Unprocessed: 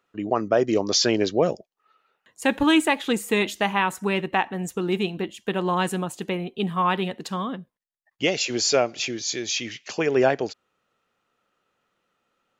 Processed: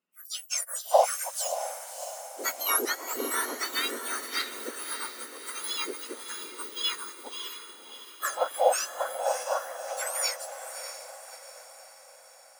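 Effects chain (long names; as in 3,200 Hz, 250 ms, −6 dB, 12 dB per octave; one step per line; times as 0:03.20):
frequency axis turned over on the octave scale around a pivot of 1,900 Hz
feedback delay with all-pass diffusion 622 ms, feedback 64%, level −6 dB
expander for the loud parts 1.5 to 1, over −39 dBFS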